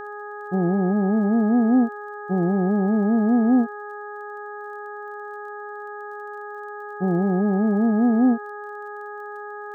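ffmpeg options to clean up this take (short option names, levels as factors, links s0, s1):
-af "adeclick=t=4,bandreject=f=415.2:t=h:w=4,bandreject=f=830.4:t=h:w=4,bandreject=f=1245.6:t=h:w=4,bandreject=f=1660.8:t=h:w=4"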